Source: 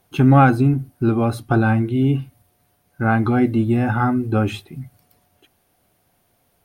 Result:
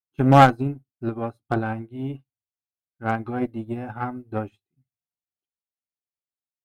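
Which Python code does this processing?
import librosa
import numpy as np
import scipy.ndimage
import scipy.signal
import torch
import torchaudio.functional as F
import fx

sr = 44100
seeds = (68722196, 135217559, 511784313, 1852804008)

y = fx.dynamic_eq(x, sr, hz=650.0, q=0.8, threshold_db=-32.0, ratio=4.0, max_db=6)
y = fx.cheby_harmonics(y, sr, harmonics=(2, 5), levels_db=(-10, -29), full_scale_db=-2.0)
y = fx.upward_expand(y, sr, threshold_db=-35.0, expansion=2.5)
y = F.gain(torch.from_numpy(y), -3.0).numpy()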